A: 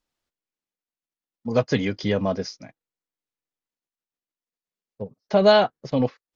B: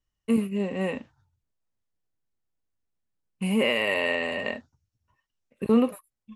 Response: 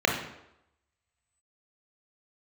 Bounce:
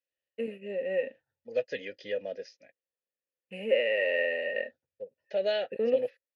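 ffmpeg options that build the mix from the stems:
-filter_complex "[0:a]highshelf=f=2100:g=11.5,volume=0.668[s0];[1:a]acontrast=67,adelay=100,volume=0.841[s1];[s0][s1]amix=inputs=2:normalize=0,asplit=3[s2][s3][s4];[s2]bandpass=f=530:t=q:w=8,volume=1[s5];[s3]bandpass=f=1840:t=q:w=8,volume=0.501[s6];[s4]bandpass=f=2480:t=q:w=8,volume=0.355[s7];[s5][s6][s7]amix=inputs=3:normalize=0"

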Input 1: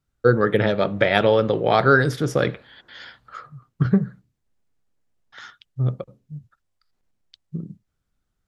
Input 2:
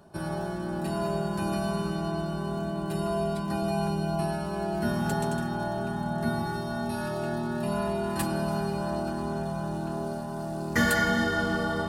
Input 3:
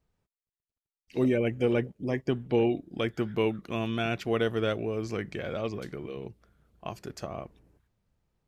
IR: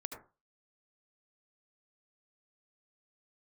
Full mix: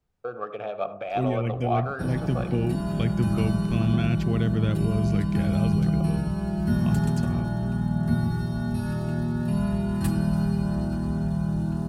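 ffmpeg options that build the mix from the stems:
-filter_complex "[0:a]alimiter=limit=0.335:level=0:latency=1:release=226,adynamicsmooth=sensitivity=7:basefreq=3900,asplit=3[s0][s1][s2];[s0]bandpass=f=730:t=q:w=8,volume=1[s3];[s1]bandpass=f=1090:t=q:w=8,volume=0.501[s4];[s2]bandpass=f=2440:t=q:w=8,volume=0.355[s5];[s3][s4][s5]amix=inputs=3:normalize=0,volume=1.06,asplit=2[s6][s7];[s7]volume=0.596[s8];[1:a]adelay=1850,volume=0.473,asplit=2[s9][s10];[s10]volume=0.631[s11];[2:a]acrossover=split=140[s12][s13];[s13]acompressor=threshold=0.0398:ratio=2[s14];[s12][s14]amix=inputs=2:normalize=0,volume=0.794,asplit=2[s15][s16];[s16]volume=0.211[s17];[3:a]atrim=start_sample=2205[s18];[s8][s11][s17]amix=inputs=3:normalize=0[s19];[s19][s18]afir=irnorm=-1:irlink=0[s20];[s6][s9][s15][s20]amix=inputs=4:normalize=0,asubboost=boost=6.5:cutoff=200"

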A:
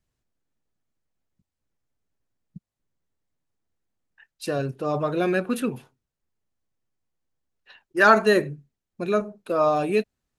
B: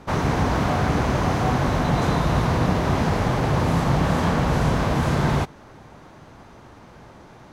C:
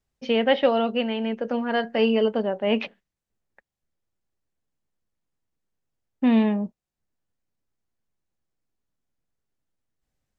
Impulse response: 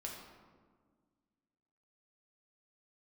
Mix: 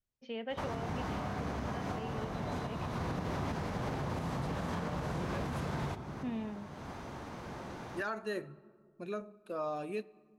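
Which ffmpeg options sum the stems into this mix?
-filter_complex "[0:a]volume=0.168,asplit=2[s0][s1];[s1]volume=0.178[s2];[1:a]highpass=f=46:p=1,acompressor=threshold=0.0501:ratio=6,adelay=500,volume=0.841,asplit=2[s3][s4];[s4]volume=0.668[s5];[2:a]volume=0.106,asplit=3[s6][s7][s8];[s7]volume=0.15[s9];[s8]apad=whole_len=353691[s10];[s3][s10]sidechaincompress=threshold=0.00158:ratio=8:attack=16:release=244[s11];[3:a]atrim=start_sample=2205[s12];[s2][s5][s9]amix=inputs=3:normalize=0[s13];[s13][s12]afir=irnorm=-1:irlink=0[s14];[s0][s11][s6][s14]amix=inputs=4:normalize=0,alimiter=level_in=1.5:limit=0.0631:level=0:latency=1:release=369,volume=0.668"

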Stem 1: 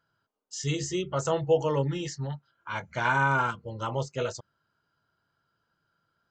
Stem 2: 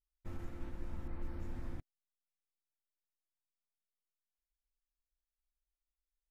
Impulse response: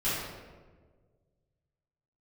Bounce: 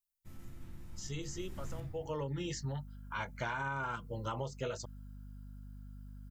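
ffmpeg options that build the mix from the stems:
-filter_complex "[0:a]alimiter=limit=0.119:level=0:latency=1:release=172,aeval=exprs='val(0)+0.00562*(sin(2*PI*50*n/s)+sin(2*PI*2*50*n/s)/2+sin(2*PI*3*50*n/s)/3+sin(2*PI*4*50*n/s)/4+sin(2*PI*5*50*n/s)/5)':c=same,adelay=450,volume=0.75[s0];[1:a]crystalizer=i=8:c=0,equalizer=f=130:w=0.93:g=12.5,volume=0.531,afade=t=in:st=1.31:d=0.74:silence=0.266073,asplit=3[s1][s2][s3];[s2]volume=0.299[s4];[s3]apad=whole_len=297967[s5];[s0][s5]sidechaincompress=threshold=0.00141:ratio=8:attack=16:release=454[s6];[2:a]atrim=start_sample=2205[s7];[s4][s7]afir=irnorm=-1:irlink=0[s8];[s6][s1][s8]amix=inputs=3:normalize=0,acompressor=threshold=0.02:ratio=6"

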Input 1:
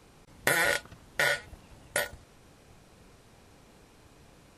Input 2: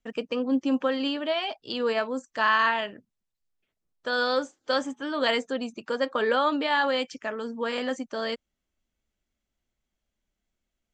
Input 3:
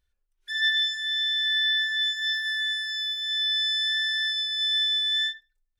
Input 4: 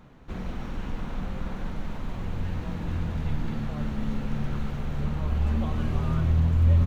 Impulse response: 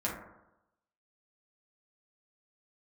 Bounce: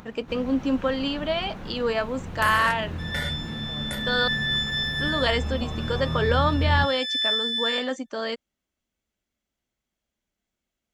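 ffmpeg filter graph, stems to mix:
-filter_complex "[0:a]adelay=1950,volume=0.422[s0];[1:a]volume=1.12,asplit=3[s1][s2][s3];[s1]atrim=end=4.28,asetpts=PTS-STARTPTS,afade=t=out:st=4.276:d=0.004:c=hsin[s4];[s2]atrim=start=4.28:end=4.94,asetpts=PTS-STARTPTS,volume=0[s5];[s3]atrim=start=4.94,asetpts=PTS-STARTPTS,afade=t=in:d=0.004:c=hsin[s6];[s4][s5][s6]concat=n=3:v=0:a=1[s7];[2:a]adelay=2500,volume=3.55,afade=t=in:st=3.99:d=0.31:silence=0.375837,afade=t=out:st=5.16:d=0.28:silence=0.237137,afade=t=in:st=6.74:d=0.29:silence=0.251189,asplit=2[s8][s9];[s9]volume=0.224[s10];[3:a]acompressor=mode=upward:threshold=0.0158:ratio=2.5,volume=0.891,asplit=2[s11][s12];[s12]volume=0.0631[s13];[s10][s13]amix=inputs=2:normalize=0,aecho=0:1:77|154|231|308:1|0.24|0.0576|0.0138[s14];[s0][s7][s8][s11][s14]amix=inputs=5:normalize=0,highpass=f=77:p=1"

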